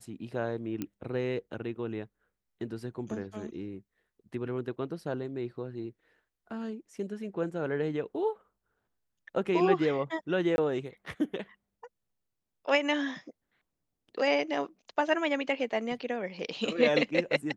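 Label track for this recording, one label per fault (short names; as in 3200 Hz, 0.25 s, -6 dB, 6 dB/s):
0.820000	0.820000	pop -20 dBFS
10.560000	10.580000	gap 21 ms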